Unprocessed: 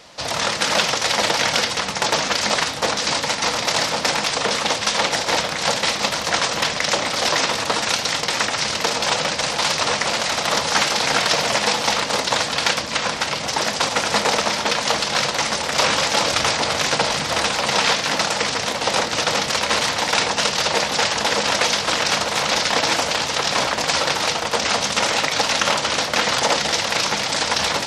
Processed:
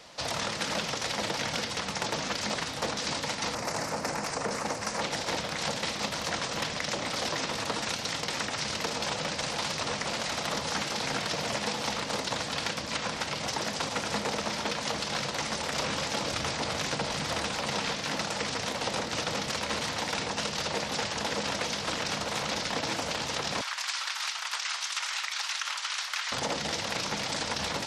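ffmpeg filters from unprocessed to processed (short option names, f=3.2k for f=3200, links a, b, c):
-filter_complex "[0:a]asettb=1/sr,asplit=3[a][b][c];[a]atrim=end=3.554[d];[b]atrim=start=3.55:end=5.01,asetpts=PTS-STARTPTS,afade=t=in:d=0.004:c=qsin,afade=t=out:st=1.456:d=0.004:c=qsin,equalizer=f=3.4k:w=1.7:g=-15[e];[c]atrim=start=5.006[f];[d][e]acrossfade=d=0.004:c1=hsin:c2=qsin[g];[g][f]acrossfade=d=0.004:c1=qsin:c2=hsin,asettb=1/sr,asplit=3[h][i][j];[h]atrim=end=23.614[k];[i]atrim=start=23.61:end=26.32,asetpts=PTS-STARTPTS,afade=t=in:d=0.004:c=qsin,afade=t=out:st=2.706:d=0.004:c=qsin,highpass=f=1.1k:w=0.5412,highpass=f=1.1k:w=1.3066[l];[j]atrim=start=26.316[m];[k][l]acrossfade=d=0.004:c1=hsin:c2=qsin[n];[n][m]acrossfade=d=0.004:c1=qsin:c2=hsin,acrossover=split=350[o][p];[p]acompressor=threshold=-24dB:ratio=6[q];[o][q]amix=inputs=2:normalize=0,volume=-5.5dB"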